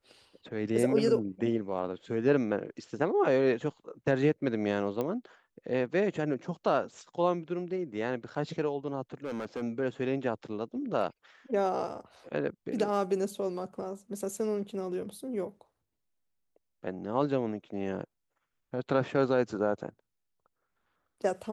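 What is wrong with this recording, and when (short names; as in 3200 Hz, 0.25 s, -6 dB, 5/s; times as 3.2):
5.01 pop -20 dBFS
9.14–9.63 clipped -31 dBFS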